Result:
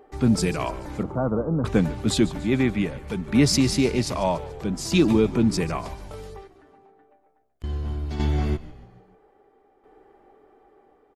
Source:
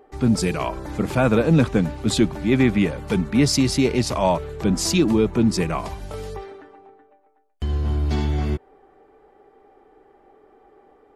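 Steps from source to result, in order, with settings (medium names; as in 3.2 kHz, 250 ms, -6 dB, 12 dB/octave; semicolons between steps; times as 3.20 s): 1.03–1.65 s: steep low-pass 1.3 kHz 48 dB/octave; 6.47–7.64 s: compression, threshold -50 dBFS, peak gain reduction 23 dB; tremolo saw down 0.61 Hz, depth 65%; on a send: frequency-shifting echo 145 ms, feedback 49%, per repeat -65 Hz, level -17 dB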